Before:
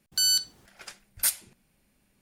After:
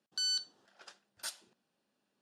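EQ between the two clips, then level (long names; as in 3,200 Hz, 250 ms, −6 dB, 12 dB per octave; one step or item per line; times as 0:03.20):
band-pass filter 300–5,100 Hz
parametric band 2,200 Hz −13.5 dB 0.34 octaves
−6.5 dB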